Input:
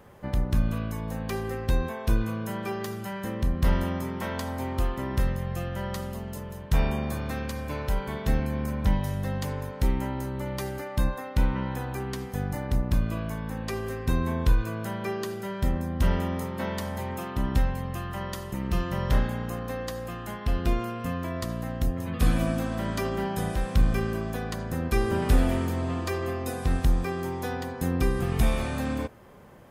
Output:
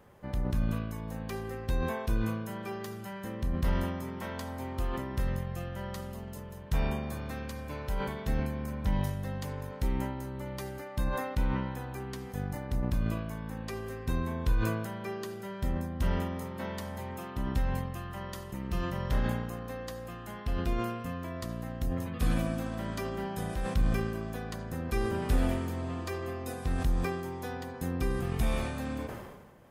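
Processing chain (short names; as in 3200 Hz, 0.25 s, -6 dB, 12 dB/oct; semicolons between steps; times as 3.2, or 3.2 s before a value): sustainer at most 43 dB/s; gain -6.5 dB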